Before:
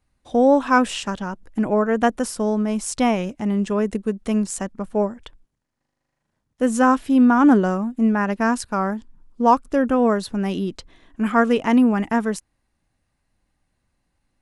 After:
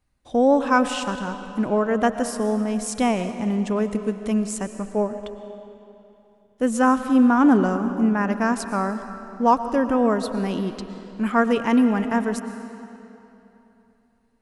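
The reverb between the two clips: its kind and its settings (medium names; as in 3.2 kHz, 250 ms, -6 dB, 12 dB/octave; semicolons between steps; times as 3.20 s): algorithmic reverb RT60 3.1 s, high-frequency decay 0.8×, pre-delay 75 ms, DRR 9.5 dB; trim -2 dB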